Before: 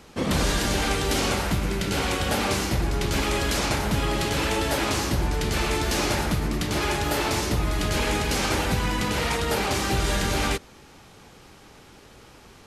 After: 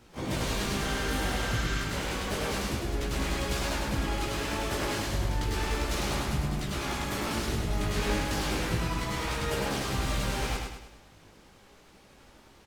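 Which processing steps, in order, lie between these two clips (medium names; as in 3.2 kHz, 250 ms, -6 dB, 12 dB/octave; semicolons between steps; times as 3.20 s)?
harmony voices -7 st -1 dB, +12 st -8 dB; chorus voices 2, 0.31 Hz, delay 17 ms, depth 2.6 ms; spectral replace 0.87–1.82 s, 1.1–8.2 kHz before; on a send: feedback delay 103 ms, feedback 46%, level -4 dB; on the sum: trim -8 dB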